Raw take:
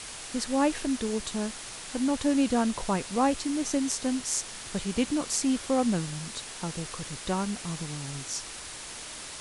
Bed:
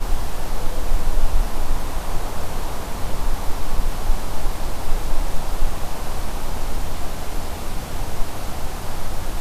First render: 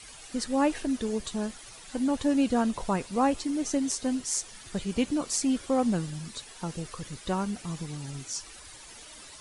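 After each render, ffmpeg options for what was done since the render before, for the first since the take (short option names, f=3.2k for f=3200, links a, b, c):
-af "afftdn=nr=11:nf=-41"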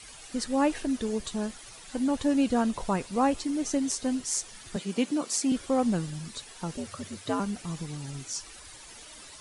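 -filter_complex "[0:a]asettb=1/sr,asplit=3[a][b][c];[a]atrim=end=4.764[d];[b]atrim=start=4.76:end=5.52,asetpts=PTS-STARTPTS,afade=t=in:d=0.004:c=qsin,afade=t=out:st=0.756:d=0.004:c=qsin,highpass=f=170:w=0.5412,highpass=f=170:w=1.3066[e];[c]atrim=start=5.516[f];[d][e]acrossfade=d=0.004:c1=hsin:c2=qsin[g];[g][f]acrossfade=d=0.004:c1=qsin:c2=hsin,asettb=1/sr,asplit=3[h][i][j];[h]atrim=end=6.774[k];[i]atrim=start=6.77:end=7.4,asetpts=PTS-STARTPTS,afade=t=in:d=0.004:c=qsin,afade=t=out:st=0.626:d=0.004:c=qsin,afreqshift=79[l];[j]atrim=start=7.396[m];[k][l]acrossfade=d=0.004:c1=hsin:c2=qsin[n];[n][m]acrossfade=d=0.004:c1=qsin:c2=hsin"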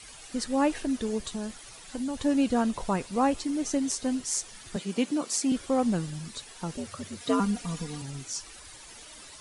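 -filter_complex "[0:a]asettb=1/sr,asplit=3[a][b][c];[a]atrim=end=1.284[d];[b]atrim=start=1.28:end=2.2,asetpts=PTS-STARTPTS,afade=t=in:d=0.004:c=qsin,afade=t=out:st=0.916:d=0.004:c=qsin,acrossover=split=150|3000[e][f][g];[f]acompressor=threshold=-30dB:ratio=6:attack=3.2:release=140:knee=2.83:detection=peak[h];[e][h][g]amix=inputs=3:normalize=0[i];[c]atrim=start=2.196[j];[d][i]acrossfade=d=0.004:c1=hsin:c2=qsin[k];[k][j]acrossfade=d=0.004:c1=qsin:c2=hsin,asettb=1/sr,asplit=3[l][m][n];[l]atrim=end=7.204[o];[m]atrim=start=7.2:end=8.02,asetpts=PTS-STARTPTS,afade=t=in:d=0.004:c=qsin,afade=t=out:st=0.816:d=0.004:c=qsin,aecho=1:1:4.2:0.98,atrim=end_sample=36162[p];[n]atrim=start=8.016[q];[o][p]acrossfade=d=0.004:c1=hsin:c2=qsin[r];[r][q]acrossfade=d=0.004:c1=qsin:c2=hsin"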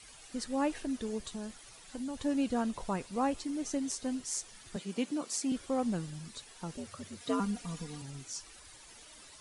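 -af "volume=-6.5dB"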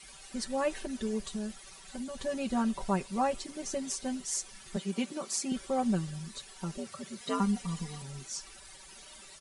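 -af "aecho=1:1:5.2:0.91"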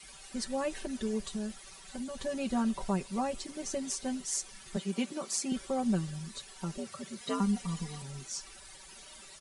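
-filter_complex "[0:a]acrossover=split=420|3000[a][b][c];[b]acompressor=threshold=-33dB:ratio=6[d];[a][d][c]amix=inputs=3:normalize=0"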